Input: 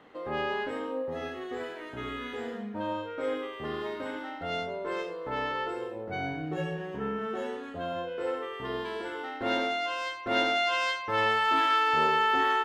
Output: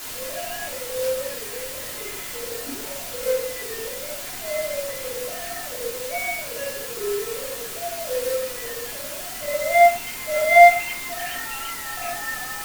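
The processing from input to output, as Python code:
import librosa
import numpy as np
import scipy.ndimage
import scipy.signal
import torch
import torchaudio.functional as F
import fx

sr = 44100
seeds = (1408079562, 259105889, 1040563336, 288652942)

p1 = fx.sine_speech(x, sr)
p2 = fx.hum_notches(p1, sr, base_hz=60, count=8)
p3 = 10.0 ** (-19.0 / 20.0) * np.tanh(p2 / 10.0 ** (-19.0 / 20.0))
p4 = p2 + (p3 * 10.0 ** (-12.0 / 20.0))
p5 = fx.band_shelf(p4, sr, hz=1100.0, db=-16.0, octaves=1.1)
p6 = fx.quant_dither(p5, sr, seeds[0], bits=6, dither='triangular')
p7 = fx.cheby_harmonics(p6, sr, harmonics=(7,), levels_db=(-29,), full_scale_db=-10.0)
y = fx.room_shoebox(p7, sr, seeds[1], volume_m3=260.0, walls='furnished', distance_m=3.1)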